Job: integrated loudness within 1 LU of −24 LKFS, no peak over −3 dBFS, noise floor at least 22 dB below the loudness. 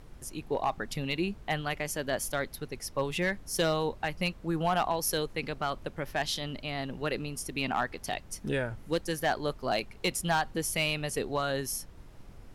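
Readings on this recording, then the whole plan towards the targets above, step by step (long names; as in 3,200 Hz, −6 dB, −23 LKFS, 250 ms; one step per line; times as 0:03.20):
share of clipped samples 0.3%; peaks flattened at −20.5 dBFS; background noise floor −50 dBFS; target noise floor −54 dBFS; integrated loudness −32.0 LKFS; sample peak −20.5 dBFS; target loudness −24.0 LKFS
→ clipped peaks rebuilt −20.5 dBFS
noise reduction from a noise print 6 dB
level +8 dB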